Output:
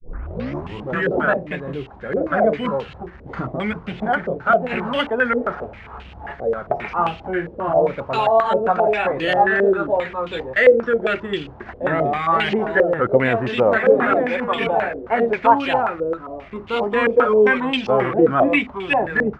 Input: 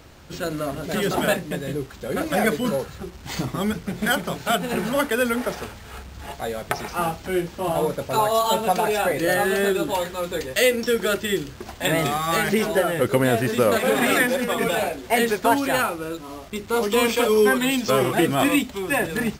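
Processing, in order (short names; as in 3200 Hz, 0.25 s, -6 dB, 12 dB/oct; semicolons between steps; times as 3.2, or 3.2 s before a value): tape start at the beginning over 1.08 s; stepped low-pass 7.5 Hz 500–2900 Hz; gain -1 dB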